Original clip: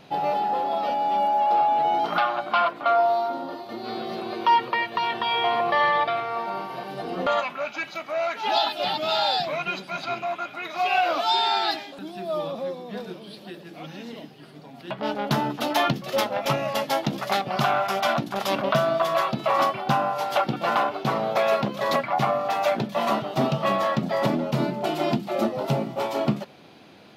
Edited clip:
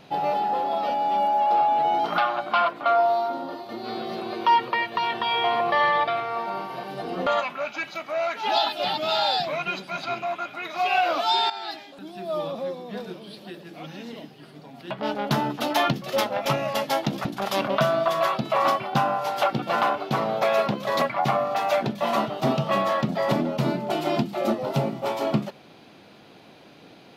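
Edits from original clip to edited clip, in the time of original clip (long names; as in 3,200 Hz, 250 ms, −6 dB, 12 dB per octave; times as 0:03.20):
0:11.50–0:12.40: fade in linear, from −13.5 dB
0:17.25–0:18.19: remove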